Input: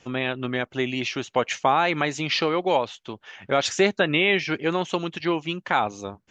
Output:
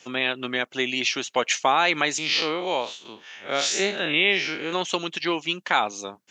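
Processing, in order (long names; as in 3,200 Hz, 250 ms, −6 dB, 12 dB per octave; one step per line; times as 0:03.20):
0:02.18–0:04.73: spectrum smeared in time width 105 ms
high-pass filter 210 Hz 12 dB per octave
high-shelf EQ 2,300 Hz +12 dB
level −2 dB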